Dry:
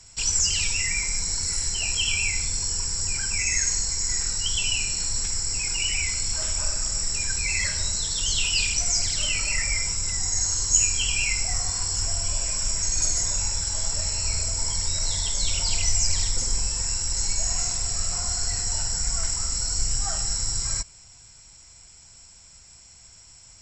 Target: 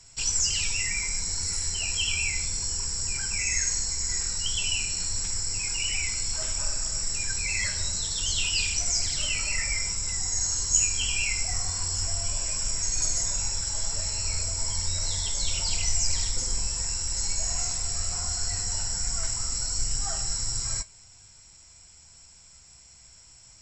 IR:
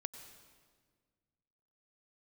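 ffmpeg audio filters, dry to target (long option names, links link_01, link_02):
-af "flanger=delay=7.1:depth=9.3:regen=64:speed=0.15:shape=triangular,volume=1.5dB"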